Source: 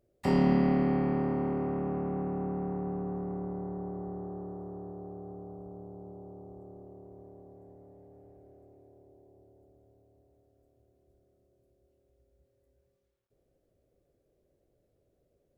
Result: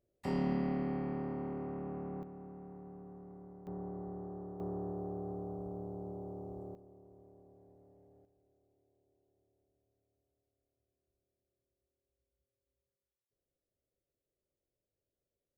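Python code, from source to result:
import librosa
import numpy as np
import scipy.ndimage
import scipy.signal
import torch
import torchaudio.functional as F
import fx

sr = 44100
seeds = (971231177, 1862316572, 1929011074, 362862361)

y = fx.gain(x, sr, db=fx.steps((0.0, -9.0), (2.23, -16.0), (3.67, -5.0), (4.6, 2.5), (6.75, -9.0), (8.25, -19.0)))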